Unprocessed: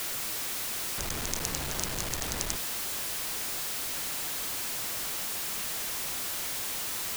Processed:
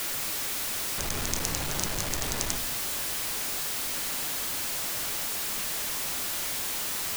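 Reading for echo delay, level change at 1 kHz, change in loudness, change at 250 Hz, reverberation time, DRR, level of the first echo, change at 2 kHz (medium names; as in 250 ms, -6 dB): no echo, +2.5 dB, +2.5 dB, +3.0 dB, 0.70 s, 8.5 dB, no echo, +2.5 dB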